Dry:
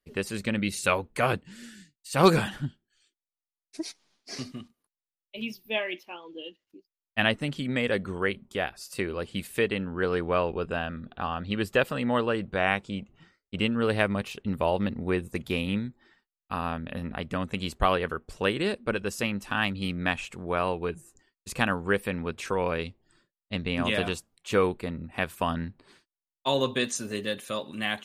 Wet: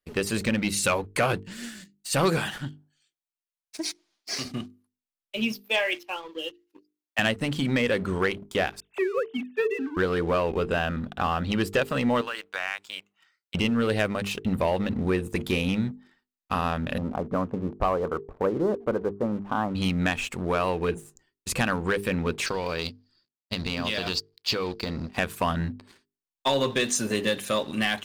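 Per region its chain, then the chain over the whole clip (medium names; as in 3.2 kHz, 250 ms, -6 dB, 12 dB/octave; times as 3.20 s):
2.38–4.45 s: bass shelf 480 Hz -10.5 dB + band-passed feedback delay 95 ms, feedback 47%, band-pass 610 Hz, level -23.5 dB
5.61–7.19 s: Bessel high-pass 450 Hz, order 8 + comb 3.7 ms, depth 34%
8.80–9.97 s: formants replaced by sine waves + distance through air 140 m
12.21–13.55 s: high-pass 1.2 kHz + compression 3:1, threshold -35 dBFS
16.98–19.75 s: steep low-pass 1.2 kHz + bass shelf 160 Hz -9 dB
22.46–25.17 s: companding laws mixed up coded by A + compression 10:1, threshold -32 dBFS + resonant low-pass 4.7 kHz, resonance Q 11
whole clip: compression 3:1, threshold -28 dBFS; waveshaping leveller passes 2; hum notches 50/100/150/200/250/300/350/400/450 Hz; trim +1 dB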